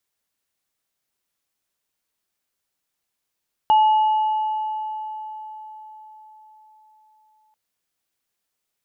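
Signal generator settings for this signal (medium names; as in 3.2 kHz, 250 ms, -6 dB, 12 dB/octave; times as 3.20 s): sine partials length 3.84 s, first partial 864 Hz, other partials 2.89 kHz, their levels -18.5 dB, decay 4.75 s, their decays 2.68 s, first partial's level -11 dB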